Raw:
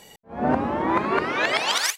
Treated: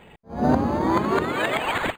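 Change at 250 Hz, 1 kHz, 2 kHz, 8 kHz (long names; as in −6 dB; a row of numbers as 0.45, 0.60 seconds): +3.5, 0.0, −2.0, −14.0 decibels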